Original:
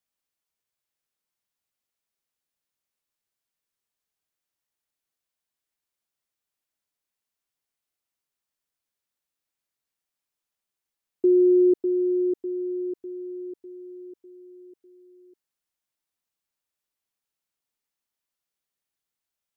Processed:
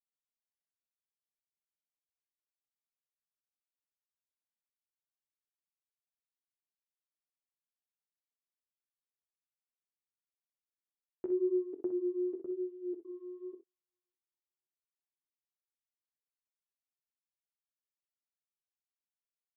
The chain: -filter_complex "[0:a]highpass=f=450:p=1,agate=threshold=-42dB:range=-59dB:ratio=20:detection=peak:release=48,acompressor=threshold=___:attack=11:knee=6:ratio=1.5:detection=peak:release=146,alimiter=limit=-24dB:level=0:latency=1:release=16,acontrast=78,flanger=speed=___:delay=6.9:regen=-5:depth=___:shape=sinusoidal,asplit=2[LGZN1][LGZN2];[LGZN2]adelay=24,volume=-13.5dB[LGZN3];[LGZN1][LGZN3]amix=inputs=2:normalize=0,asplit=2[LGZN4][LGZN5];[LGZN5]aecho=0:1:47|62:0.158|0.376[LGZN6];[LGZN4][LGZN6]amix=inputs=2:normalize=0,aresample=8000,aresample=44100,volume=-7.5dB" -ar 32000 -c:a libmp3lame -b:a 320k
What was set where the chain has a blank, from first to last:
-28dB, 0.94, 9.2